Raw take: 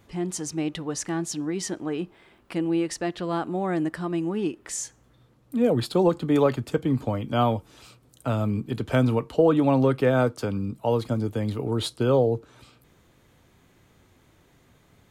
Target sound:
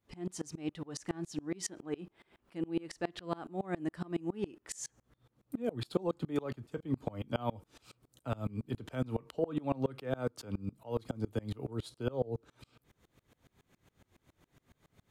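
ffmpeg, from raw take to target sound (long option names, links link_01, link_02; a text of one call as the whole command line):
ffmpeg -i in.wav -af "acompressor=threshold=-25dB:ratio=2,aeval=exprs='val(0)*pow(10,-28*if(lt(mod(-7.2*n/s,1),2*abs(-7.2)/1000),1-mod(-7.2*n/s,1)/(2*abs(-7.2)/1000),(mod(-7.2*n/s,1)-2*abs(-7.2)/1000)/(1-2*abs(-7.2)/1000))/20)':channel_layout=same,volume=-1.5dB" out.wav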